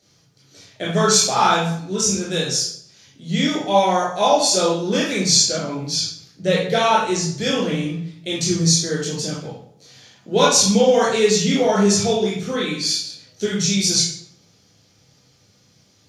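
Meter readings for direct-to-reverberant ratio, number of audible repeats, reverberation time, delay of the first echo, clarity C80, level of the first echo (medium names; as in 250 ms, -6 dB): -6.0 dB, no echo, 0.65 s, no echo, 6.5 dB, no echo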